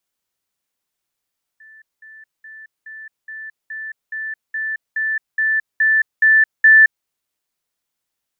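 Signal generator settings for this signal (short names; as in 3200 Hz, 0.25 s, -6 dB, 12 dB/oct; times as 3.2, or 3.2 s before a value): level ladder 1760 Hz -41.5 dBFS, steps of 3 dB, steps 13, 0.22 s 0.20 s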